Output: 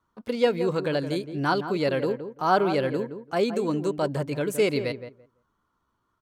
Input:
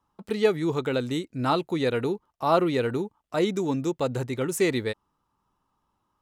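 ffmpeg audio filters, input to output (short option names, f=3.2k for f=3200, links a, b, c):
-filter_complex "[0:a]highshelf=f=9k:g=-7.5,asetrate=49501,aresample=44100,atempo=0.890899,asplit=2[a][b];[b]adelay=169,lowpass=f=1.3k:p=1,volume=-9dB,asplit=2[c][d];[d]adelay=169,lowpass=f=1.3k:p=1,volume=0.17,asplit=2[e][f];[f]adelay=169,lowpass=f=1.3k:p=1,volume=0.17[g];[c][e][g]amix=inputs=3:normalize=0[h];[a][h]amix=inputs=2:normalize=0"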